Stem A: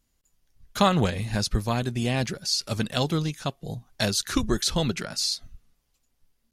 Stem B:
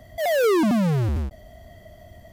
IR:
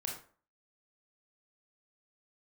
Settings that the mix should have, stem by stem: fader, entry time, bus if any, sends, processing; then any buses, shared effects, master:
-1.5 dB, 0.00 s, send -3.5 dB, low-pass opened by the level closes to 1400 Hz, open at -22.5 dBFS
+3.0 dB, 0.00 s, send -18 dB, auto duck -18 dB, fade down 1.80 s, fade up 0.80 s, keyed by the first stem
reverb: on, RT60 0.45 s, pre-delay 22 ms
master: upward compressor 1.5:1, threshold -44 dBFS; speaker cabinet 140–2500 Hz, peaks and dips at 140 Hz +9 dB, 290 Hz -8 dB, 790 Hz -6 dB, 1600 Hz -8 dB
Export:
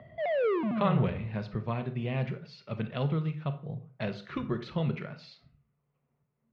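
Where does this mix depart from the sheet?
stem A -1.5 dB -> -8.5 dB; stem B +3.0 dB -> -3.5 dB

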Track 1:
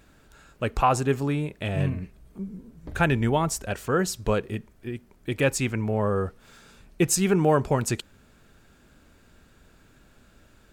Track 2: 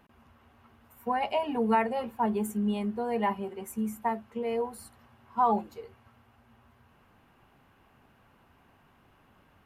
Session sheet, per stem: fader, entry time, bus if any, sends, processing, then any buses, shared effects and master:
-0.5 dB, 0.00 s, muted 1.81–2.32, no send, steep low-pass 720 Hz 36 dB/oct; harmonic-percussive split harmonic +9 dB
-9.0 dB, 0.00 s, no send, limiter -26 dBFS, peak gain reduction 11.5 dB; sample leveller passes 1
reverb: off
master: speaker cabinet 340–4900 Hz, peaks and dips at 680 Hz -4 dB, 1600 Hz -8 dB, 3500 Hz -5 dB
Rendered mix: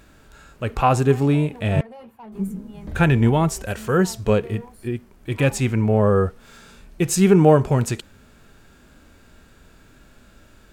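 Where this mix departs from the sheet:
stem 1: missing steep low-pass 720 Hz 36 dB/oct; master: missing speaker cabinet 340–4900 Hz, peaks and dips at 680 Hz -4 dB, 1600 Hz -8 dB, 3500 Hz -5 dB

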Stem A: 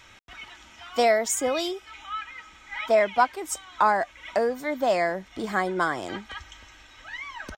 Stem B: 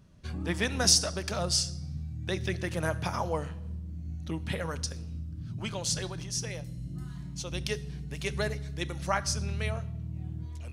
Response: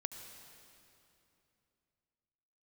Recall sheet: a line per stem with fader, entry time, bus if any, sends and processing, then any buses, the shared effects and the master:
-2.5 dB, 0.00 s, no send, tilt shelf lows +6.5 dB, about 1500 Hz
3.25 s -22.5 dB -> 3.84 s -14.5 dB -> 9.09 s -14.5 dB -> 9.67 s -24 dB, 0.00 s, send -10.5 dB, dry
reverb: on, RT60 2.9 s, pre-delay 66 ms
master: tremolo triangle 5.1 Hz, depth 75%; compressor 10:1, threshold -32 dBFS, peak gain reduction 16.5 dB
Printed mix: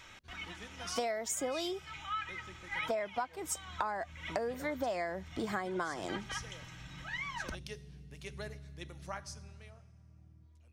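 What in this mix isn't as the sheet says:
stem A: missing tilt shelf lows +6.5 dB, about 1500 Hz; master: missing tremolo triangle 5.1 Hz, depth 75%

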